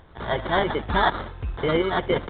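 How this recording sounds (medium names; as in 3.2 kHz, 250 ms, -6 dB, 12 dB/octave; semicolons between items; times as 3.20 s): aliases and images of a low sample rate 2.6 kHz, jitter 0%; µ-law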